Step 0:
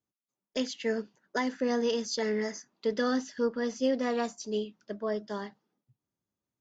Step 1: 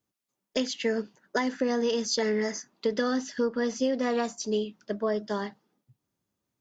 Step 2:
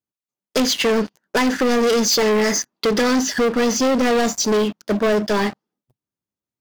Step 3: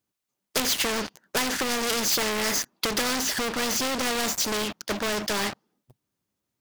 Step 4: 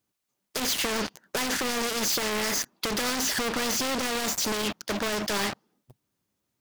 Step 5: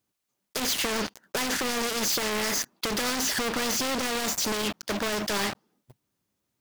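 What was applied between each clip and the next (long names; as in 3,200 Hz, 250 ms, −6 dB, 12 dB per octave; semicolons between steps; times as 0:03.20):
downward compressor 4 to 1, threshold −30 dBFS, peak gain reduction 7 dB; level +6.5 dB
leveller curve on the samples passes 5
every bin compressed towards the loudest bin 2 to 1; level +3 dB
brickwall limiter −21.5 dBFS, peak gain reduction 10.5 dB; level +2.5 dB
one scale factor per block 5 bits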